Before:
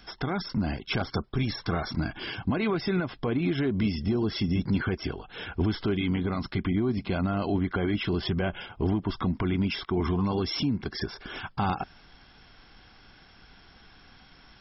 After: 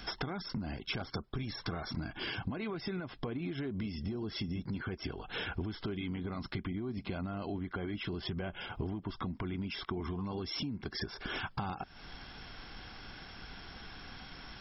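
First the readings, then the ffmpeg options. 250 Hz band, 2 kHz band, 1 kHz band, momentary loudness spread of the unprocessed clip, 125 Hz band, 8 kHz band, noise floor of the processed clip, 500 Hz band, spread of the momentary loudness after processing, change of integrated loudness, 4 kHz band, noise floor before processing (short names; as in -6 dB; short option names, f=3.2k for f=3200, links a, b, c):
-11.0 dB, -6.5 dB, -9.0 dB, 6 LU, -10.0 dB, n/a, -53 dBFS, -10.5 dB, 10 LU, -10.5 dB, -5.5 dB, -55 dBFS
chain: -af "acompressor=threshold=-40dB:ratio=16,volume=5.5dB"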